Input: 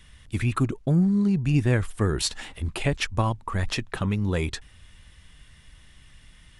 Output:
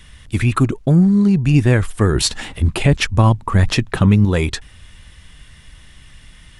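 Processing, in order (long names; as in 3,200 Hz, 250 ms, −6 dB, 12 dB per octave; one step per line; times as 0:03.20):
0:02.15–0:04.25: parametric band 140 Hz +6 dB 2.7 octaves
boost into a limiter +9.5 dB
level −1 dB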